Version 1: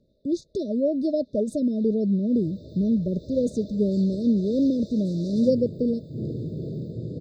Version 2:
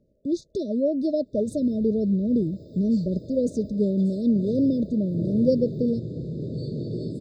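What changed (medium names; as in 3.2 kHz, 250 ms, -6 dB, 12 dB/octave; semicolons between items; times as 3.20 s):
first sound: add inverse Chebyshev band-stop 2.1–6.2 kHz, stop band 50 dB; second sound: entry -1.00 s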